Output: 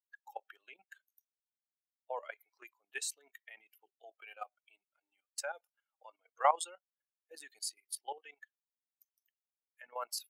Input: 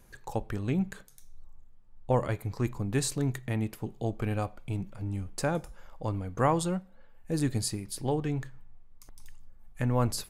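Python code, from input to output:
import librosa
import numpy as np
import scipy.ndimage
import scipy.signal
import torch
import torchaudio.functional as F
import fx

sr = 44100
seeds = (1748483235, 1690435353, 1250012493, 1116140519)

y = fx.bin_expand(x, sr, power=2.0)
y = scipy.signal.sosfilt(scipy.signal.butter(6, 590.0, 'highpass', fs=sr, output='sos'), y)
y = fx.level_steps(y, sr, step_db=14)
y = y * librosa.db_to_amplitude(4.5)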